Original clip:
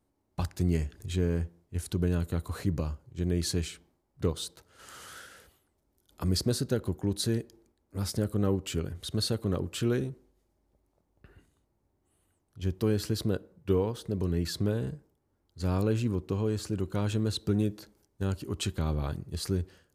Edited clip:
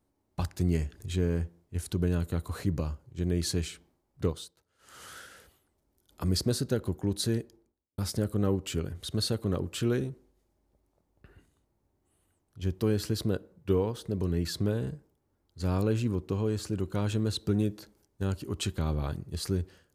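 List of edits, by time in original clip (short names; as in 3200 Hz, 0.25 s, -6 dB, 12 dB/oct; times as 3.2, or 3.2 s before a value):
4.26–5.05 dip -14.5 dB, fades 0.25 s
7.35–7.98 studio fade out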